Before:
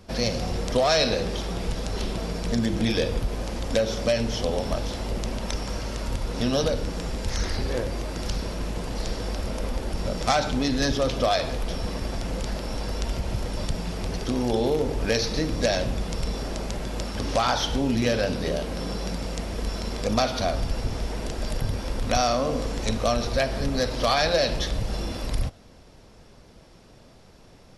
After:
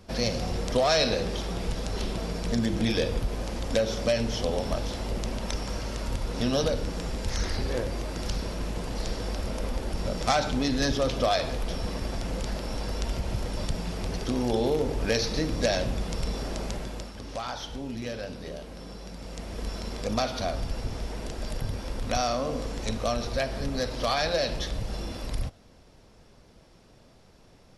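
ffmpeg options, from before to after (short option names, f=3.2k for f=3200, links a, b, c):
-af "volume=5dB,afade=t=out:st=16.7:d=0.45:silence=0.334965,afade=t=in:st=19.13:d=0.51:silence=0.446684"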